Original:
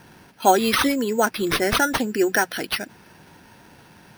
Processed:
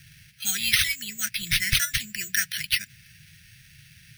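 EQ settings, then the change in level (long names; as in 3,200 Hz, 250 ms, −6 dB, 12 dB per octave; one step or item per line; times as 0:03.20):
elliptic band-stop filter 140–2,000 Hz, stop band 40 dB
+3.0 dB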